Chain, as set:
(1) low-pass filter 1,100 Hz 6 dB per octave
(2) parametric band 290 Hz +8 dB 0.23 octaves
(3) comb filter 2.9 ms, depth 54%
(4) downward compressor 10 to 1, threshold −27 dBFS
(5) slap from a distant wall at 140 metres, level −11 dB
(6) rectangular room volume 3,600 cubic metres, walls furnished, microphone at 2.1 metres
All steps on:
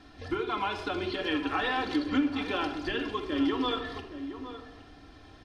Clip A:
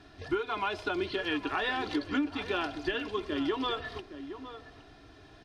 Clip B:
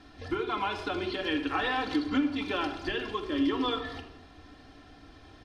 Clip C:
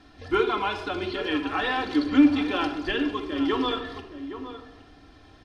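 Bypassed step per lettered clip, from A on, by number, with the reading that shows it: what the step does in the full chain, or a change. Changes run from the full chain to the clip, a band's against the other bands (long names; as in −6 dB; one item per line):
6, echo-to-direct ratio −3.0 dB to −13.5 dB
5, change in momentary loudness spread −5 LU
4, average gain reduction 2.0 dB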